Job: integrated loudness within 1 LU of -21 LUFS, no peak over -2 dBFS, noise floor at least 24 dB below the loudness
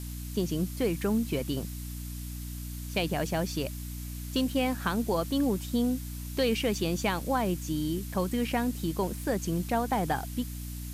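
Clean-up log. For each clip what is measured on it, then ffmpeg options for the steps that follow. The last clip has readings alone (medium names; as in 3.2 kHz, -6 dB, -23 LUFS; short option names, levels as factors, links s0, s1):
hum 60 Hz; highest harmonic 300 Hz; hum level -35 dBFS; noise floor -38 dBFS; noise floor target -55 dBFS; loudness -31.0 LUFS; peak level -16.0 dBFS; loudness target -21.0 LUFS
-> -af "bandreject=f=60:t=h:w=4,bandreject=f=120:t=h:w=4,bandreject=f=180:t=h:w=4,bandreject=f=240:t=h:w=4,bandreject=f=300:t=h:w=4"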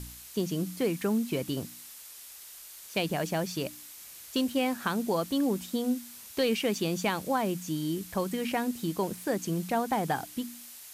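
hum not found; noise floor -48 dBFS; noise floor target -55 dBFS
-> -af "afftdn=nr=7:nf=-48"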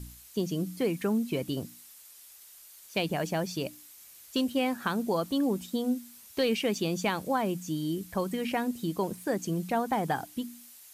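noise floor -52 dBFS; noise floor target -55 dBFS
-> -af "afftdn=nr=6:nf=-52"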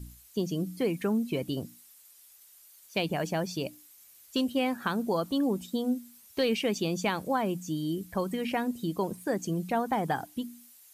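noise floor -56 dBFS; loudness -31.0 LUFS; peak level -17.0 dBFS; loudness target -21.0 LUFS
-> -af "volume=3.16"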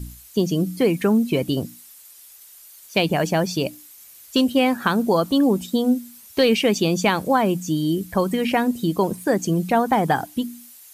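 loudness -21.0 LUFS; peak level -7.0 dBFS; noise floor -46 dBFS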